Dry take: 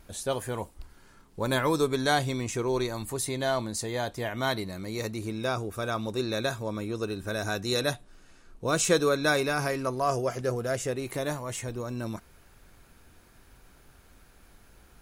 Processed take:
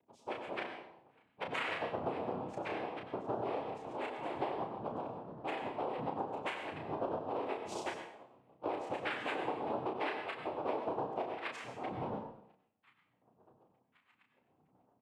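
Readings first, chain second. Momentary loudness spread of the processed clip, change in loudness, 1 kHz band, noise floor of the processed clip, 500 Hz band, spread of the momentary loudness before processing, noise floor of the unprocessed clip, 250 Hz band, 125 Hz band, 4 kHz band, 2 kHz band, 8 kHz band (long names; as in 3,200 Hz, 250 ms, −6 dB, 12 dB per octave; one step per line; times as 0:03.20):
7 LU, −10.0 dB, −5.0 dB, −76 dBFS, −10.0 dB, 10 LU, −57 dBFS, −11.5 dB, −17.5 dB, −14.5 dB, −10.5 dB, −26.0 dB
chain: spectral peaks only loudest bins 8
repeating echo 66 ms, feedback 60%, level −21 dB
LFO wah 0.8 Hz 410–1,400 Hz, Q 4.7
cochlear-implant simulation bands 4
double-tracking delay 32 ms −5 dB
downward compressor 6 to 1, threshold −47 dBFS, peak gain reduction 18 dB
dense smooth reverb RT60 0.55 s, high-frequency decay 1×, pre-delay 80 ms, DRR 6 dB
level +11.5 dB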